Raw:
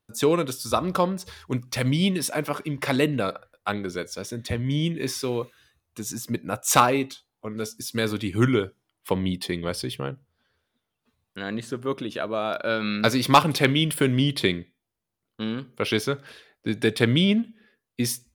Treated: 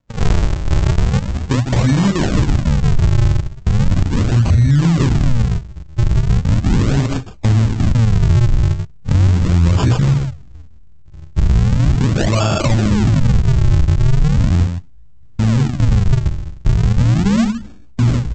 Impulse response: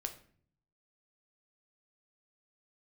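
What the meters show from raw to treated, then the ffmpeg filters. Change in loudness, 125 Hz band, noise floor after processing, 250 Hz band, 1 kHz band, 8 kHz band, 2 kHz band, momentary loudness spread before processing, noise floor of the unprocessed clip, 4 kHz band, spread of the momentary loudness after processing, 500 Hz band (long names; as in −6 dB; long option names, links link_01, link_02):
+9.5 dB, +17.0 dB, −37 dBFS, +7.5 dB, −1.5 dB, −0.5 dB, +0.5 dB, 13 LU, −82 dBFS, −1.0 dB, 6 LU, −0.5 dB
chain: -af "asubboost=boost=8:cutoff=100,acompressor=threshold=-25dB:ratio=6,aecho=1:1:3.4:0.33,aecho=1:1:34.99|157.4:0.708|0.282,aresample=16000,acrusher=samples=38:mix=1:aa=0.000001:lfo=1:lforange=60.8:lforate=0.38,aresample=44100,asubboost=boost=3.5:cutoff=230,alimiter=level_in=19dB:limit=-1dB:release=50:level=0:latency=1,volume=-4.5dB"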